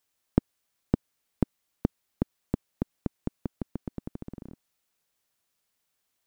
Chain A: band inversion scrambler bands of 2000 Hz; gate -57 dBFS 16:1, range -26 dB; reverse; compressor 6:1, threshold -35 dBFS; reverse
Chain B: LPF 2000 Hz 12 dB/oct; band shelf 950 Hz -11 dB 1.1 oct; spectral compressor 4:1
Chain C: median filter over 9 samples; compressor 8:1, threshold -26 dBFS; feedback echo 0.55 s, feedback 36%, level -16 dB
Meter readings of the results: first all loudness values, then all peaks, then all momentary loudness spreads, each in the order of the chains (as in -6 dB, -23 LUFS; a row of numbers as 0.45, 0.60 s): -42.0, -34.0, -40.5 LUFS; -20.5, -4.5, -10.5 dBFS; 3, 3, 7 LU